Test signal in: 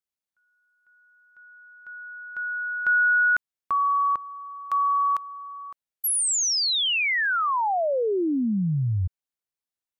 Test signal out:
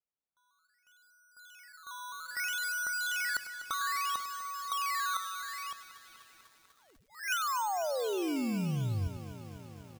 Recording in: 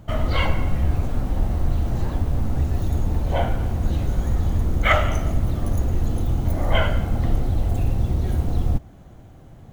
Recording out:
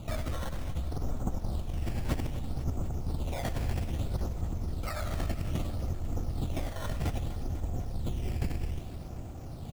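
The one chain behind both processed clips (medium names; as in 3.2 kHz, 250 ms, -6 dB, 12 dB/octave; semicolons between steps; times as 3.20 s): elliptic low-pass 1.4 kHz, stop band 40 dB; compressor with a negative ratio -28 dBFS, ratio -1; decimation with a swept rate 12×, swing 100% 0.62 Hz; delay 99 ms -14 dB; bit-crushed delay 248 ms, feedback 80%, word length 8-bit, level -14 dB; trim -4.5 dB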